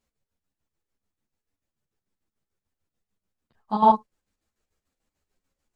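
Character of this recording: chopped level 6.8 Hz, depth 60%, duty 55%; a shimmering, thickened sound

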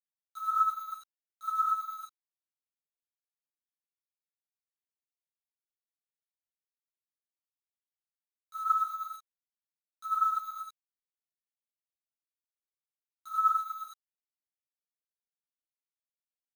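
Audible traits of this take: a quantiser's noise floor 8-bit, dither none; tremolo triangle 9 Hz, depth 50%; a shimmering, thickened sound

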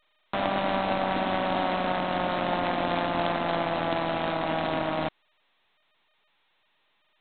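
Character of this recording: G.726

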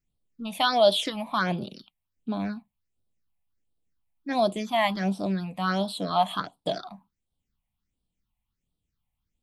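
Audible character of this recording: phasing stages 6, 1.4 Hz, lowest notch 370–1900 Hz

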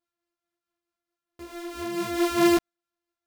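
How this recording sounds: a buzz of ramps at a fixed pitch in blocks of 128 samples; tremolo triangle 4.6 Hz, depth 40%; a shimmering, thickened sound

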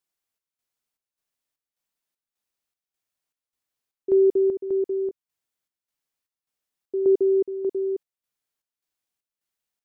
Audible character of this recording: chopped level 1.7 Hz, depth 60%, duty 65%

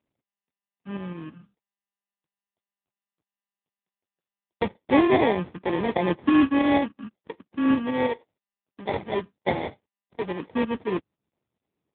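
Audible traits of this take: a buzz of ramps at a fixed pitch in blocks of 16 samples; tremolo saw up 6.2 Hz, depth 55%; aliases and images of a low sample rate 1.4 kHz, jitter 0%; AMR-NB

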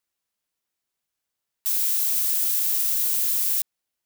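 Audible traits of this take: noise floor -84 dBFS; spectral tilt +6.0 dB/octave

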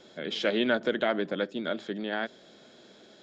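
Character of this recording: noise floor -55 dBFS; spectral tilt -2.0 dB/octave

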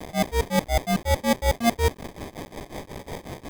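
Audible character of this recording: a quantiser's noise floor 6-bit, dither triangular; tremolo triangle 5.5 Hz, depth 95%; aliases and images of a low sample rate 1.4 kHz, jitter 0%; Vorbis

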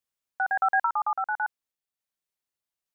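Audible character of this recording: random-step tremolo

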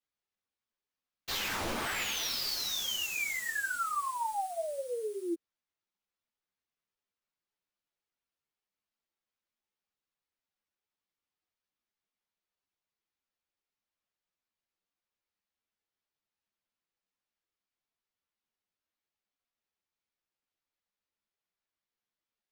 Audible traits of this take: aliases and images of a low sample rate 9.5 kHz, jitter 20%; a shimmering, thickened sound

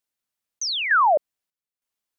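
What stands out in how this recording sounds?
chopped level 1.1 Hz, depth 65%, duty 65%

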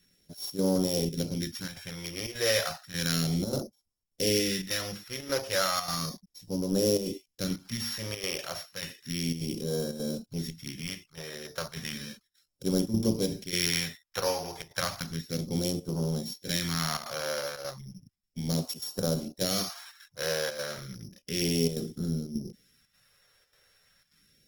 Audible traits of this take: a buzz of ramps at a fixed pitch in blocks of 8 samples; chopped level 1.7 Hz, depth 60%, duty 85%; phasing stages 2, 0.33 Hz, lowest notch 210–2000 Hz; Opus

